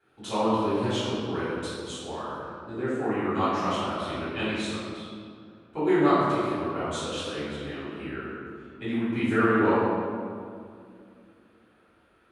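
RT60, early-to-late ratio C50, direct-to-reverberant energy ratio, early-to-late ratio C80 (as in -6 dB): 2.3 s, -3.0 dB, -13.0 dB, -0.5 dB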